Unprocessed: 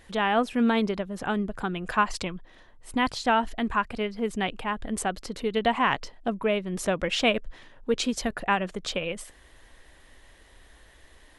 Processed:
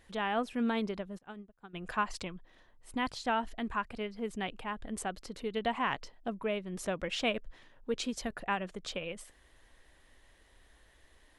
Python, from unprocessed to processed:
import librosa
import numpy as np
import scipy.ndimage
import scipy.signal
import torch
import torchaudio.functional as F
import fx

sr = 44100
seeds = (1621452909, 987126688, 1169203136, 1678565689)

y = fx.upward_expand(x, sr, threshold_db=-38.0, expansion=2.5, at=(1.17, 1.73), fade=0.02)
y = y * 10.0 ** (-8.5 / 20.0)